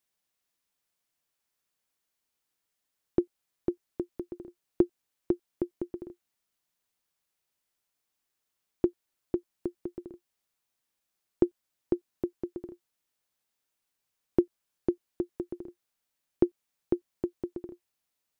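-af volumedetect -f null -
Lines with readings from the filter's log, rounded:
mean_volume: -37.1 dB
max_volume: -9.3 dB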